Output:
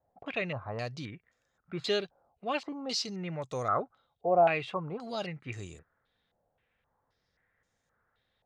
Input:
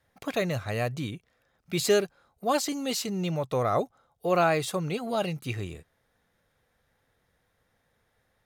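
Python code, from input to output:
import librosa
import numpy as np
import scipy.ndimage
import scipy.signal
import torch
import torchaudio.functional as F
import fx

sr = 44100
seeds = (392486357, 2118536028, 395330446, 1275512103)

y = fx.filter_held_lowpass(x, sr, hz=3.8, low_hz=730.0, high_hz=7000.0)
y = y * 10.0 ** (-8.0 / 20.0)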